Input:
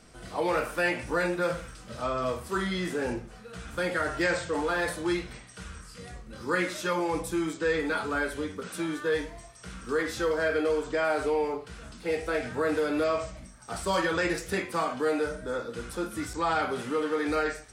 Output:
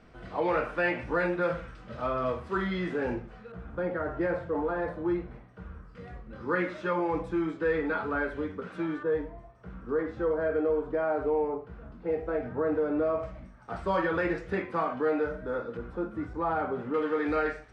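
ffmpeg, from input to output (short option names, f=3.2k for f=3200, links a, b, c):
-af "asetnsamples=n=441:p=0,asendcmd='3.52 lowpass f 1000;5.95 lowpass f 1800;9.03 lowpass f 1000;13.23 lowpass f 1800;15.77 lowpass f 1100;16.94 lowpass f 2300',lowpass=2.4k"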